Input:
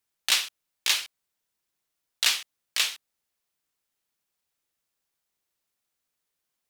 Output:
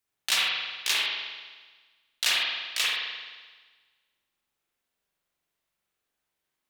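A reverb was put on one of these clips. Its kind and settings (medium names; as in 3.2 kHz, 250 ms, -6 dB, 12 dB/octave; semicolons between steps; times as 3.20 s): spring tank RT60 1.4 s, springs 43 ms, chirp 35 ms, DRR -5.5 dB; trim -3.5 dB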